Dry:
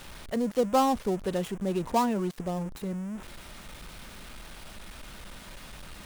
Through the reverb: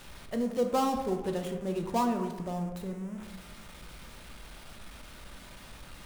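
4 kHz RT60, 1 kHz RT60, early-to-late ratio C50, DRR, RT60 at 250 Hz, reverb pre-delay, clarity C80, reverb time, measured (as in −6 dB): 0.65 s, 1.1 s, 7.5 dB, 4.0 dB, 1.3 s, 7 ms, 9.5 dB, 1.1 s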